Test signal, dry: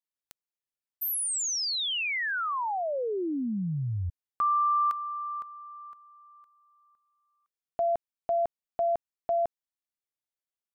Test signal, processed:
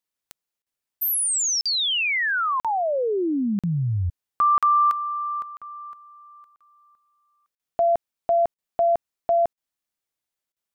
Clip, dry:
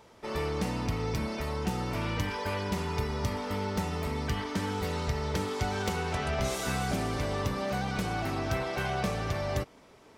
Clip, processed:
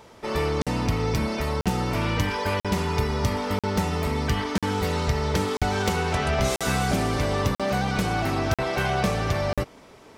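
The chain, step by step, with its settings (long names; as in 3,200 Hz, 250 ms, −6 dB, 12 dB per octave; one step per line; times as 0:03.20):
regular buffer underruns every 0.99 s, samples 2,048, zero, from 0:00.62
level +7 dB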